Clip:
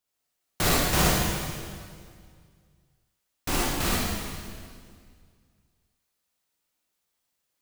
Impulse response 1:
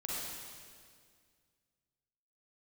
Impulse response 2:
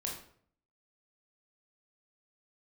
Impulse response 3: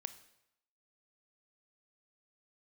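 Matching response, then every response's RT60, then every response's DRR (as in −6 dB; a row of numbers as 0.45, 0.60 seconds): 1; 2.0, 0.60, 0.80 seconds; −6.0, −2.0, 11.5 decibels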